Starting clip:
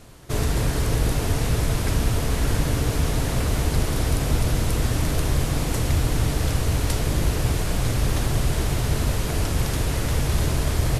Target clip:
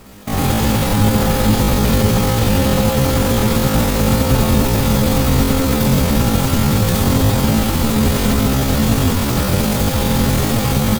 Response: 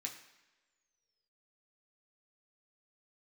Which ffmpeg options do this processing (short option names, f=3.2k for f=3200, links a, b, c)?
-filter_complex "[0:a]aecho=1:1:90|172|218:0.168|0.2|0.178,asplit=2[a][b];[1:a]atrim=start_sample=2205,adelay=77[c];[b][c]afir=irnorm=-1:irlink=0,volume=3dB[d];[a][d]amix=inputs=2:normalize=0,asetrate=80880,aresample=44100,atempo=0.545254,volume=5dB"